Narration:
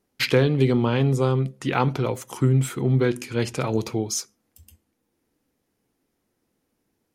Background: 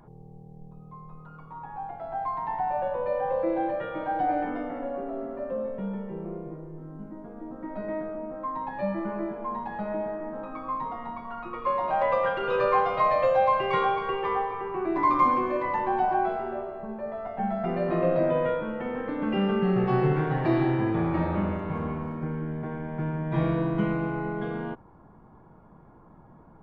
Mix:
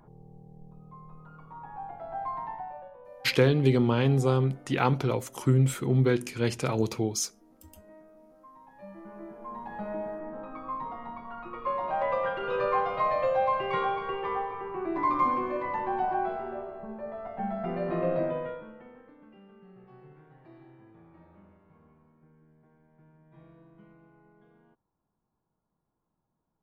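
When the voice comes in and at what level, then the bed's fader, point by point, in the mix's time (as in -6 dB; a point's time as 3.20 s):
3.05 s, -3.0 dB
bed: 2.40 s -3.5 dB
2.96 s -20.5 dB
8.66 s -20.5 dB
9.78 s -4 dB
18.19 s -4 dB
19.40 s -29.5 dB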